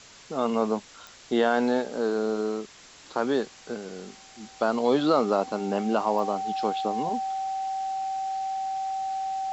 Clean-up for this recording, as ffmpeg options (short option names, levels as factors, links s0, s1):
-af "adeclick=t=4,bandreject=f=770:w=30,afwtdn=0.005"